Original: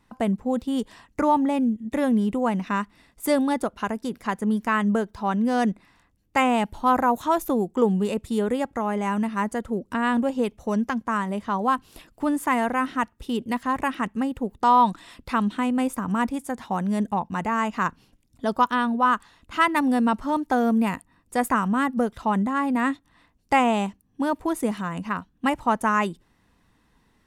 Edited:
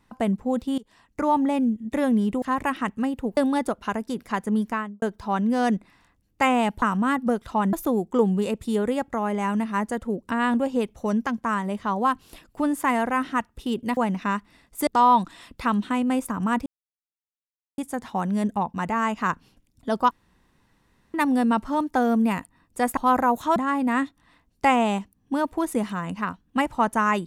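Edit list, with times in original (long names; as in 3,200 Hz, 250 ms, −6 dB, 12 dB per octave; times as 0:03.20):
0:00.78–0:01.41: fade in, from −21.5 dB
0:02.42–0:03.32: swap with 0:13.60–0:14.55
0:04.57–0:04.97: fade out and dull
0:06.77–0:07.36: swap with 0:21.53–0:22.44
0:16.34: splice in silence 1.12 s
0:18.67–0:19.70: fill with room tone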